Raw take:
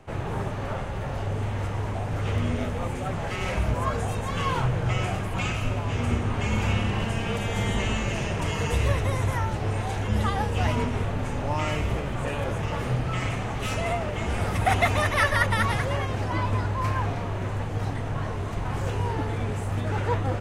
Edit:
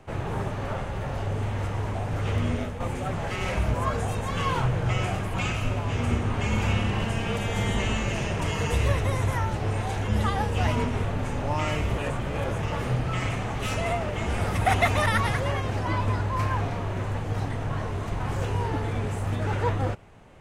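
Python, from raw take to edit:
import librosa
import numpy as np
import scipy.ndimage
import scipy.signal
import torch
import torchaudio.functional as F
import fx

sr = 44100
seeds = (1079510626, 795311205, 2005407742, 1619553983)

y = fx.edit(x, sr, fx.fade_out_to(start_s=2.54, length_s=0.26, floor_db=-7.5),
    fx.reverse_span(start_s=11.98, length_s=0.39),
    fx.cut(start_s=15.06, length_s=0.45), tone=tone)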